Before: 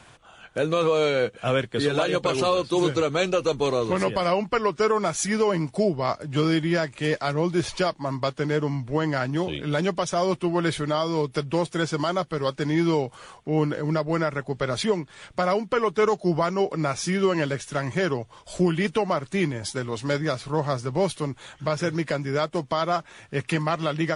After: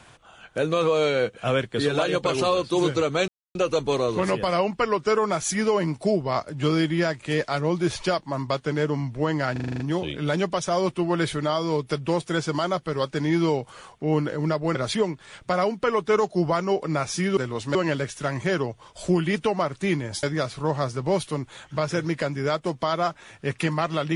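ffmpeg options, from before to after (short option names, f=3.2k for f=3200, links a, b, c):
-filter_complex "[0:a]asplit=13[a][b][c][d][e][f][g][h][i][j][k][l][m];[a]atrim=end=3.28,asetpts=PTS-STARTPTS,afade=t=out:st=3.276:d=0.004:c=hsin,apad=pad_dur=0.27[n];[b]atrim=start=3.28:end=9.292,asetpts=PTS-STARTPTS,afade=t=in:d=0.004:c=hsin[o];[c]atrim=start=9.248:end=9.292[p];[d]atrim=start=9.248:end=9.292[q];[e]atrim=start=9.248:end=9.292[r];[f]atrim=start=9.248:end=9.292[s];[g]atrim=start=9.248:end=9.292[t];[h]atrim=start=9.248:end=9.292[u];[i]atrim=start=9.248:end=14.202[v];[j]atrim=start=14.638:end=17.262[w];[k]atrim=start=19.738:end=20.122[x];[l]atrim=start=17.258:end=19.742[y];[m]atrim=start=20.118[z];[n][o]concat=n=2:v=0:a=1[aa];[aa][p]acrossfade=d=0.004:c1=hsin:c2=hsin[ab];[ab][q]acrossfade=d=0.004:c1=hsin:c2=hsin[ac];[ac][r]acrossfade=d=0.004:c1=hsin:c2=hsin[ad];[ad][s]acrossfade=d=0.004:c1=hsin:c2=hsin[ae];[ae][t]acrossfade=d=0.004:c1=hsin:c2=hsin[af];[af][u]acrossfade=d=0.004:c1=hsin:c2=hsin[ag];[ag][v]acrossfade=d=0.004:c1=hsin:c2=hsin[ah];[ah][w]acrossfade=d=0.004:c1=hsin:c2=hsin[ai];[ai][x]acrossfade=d=0.004:c1=hsin:c2=hsin[aj];[aj][y]acrossfade=d=0.004:c1=hsin:c2=hsin[ak];[ak][z]acrossfade=d=0.004:c1=hsin:c2=hsin"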